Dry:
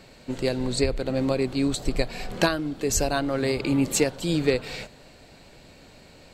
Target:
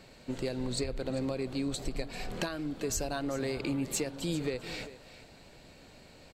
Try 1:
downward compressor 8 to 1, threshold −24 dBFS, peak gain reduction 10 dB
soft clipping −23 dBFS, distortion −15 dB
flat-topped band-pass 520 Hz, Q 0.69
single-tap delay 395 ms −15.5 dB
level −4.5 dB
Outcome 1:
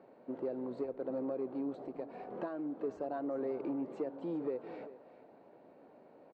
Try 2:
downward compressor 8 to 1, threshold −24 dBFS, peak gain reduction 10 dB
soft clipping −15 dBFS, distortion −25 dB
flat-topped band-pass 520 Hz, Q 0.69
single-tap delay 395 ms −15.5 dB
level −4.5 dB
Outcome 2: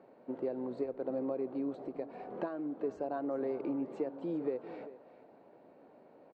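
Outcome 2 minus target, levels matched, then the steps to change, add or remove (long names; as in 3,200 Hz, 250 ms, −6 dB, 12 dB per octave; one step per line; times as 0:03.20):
500 Hz band +3.0 dB
remove: flat-topped band-pass 520 Hz, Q 0.69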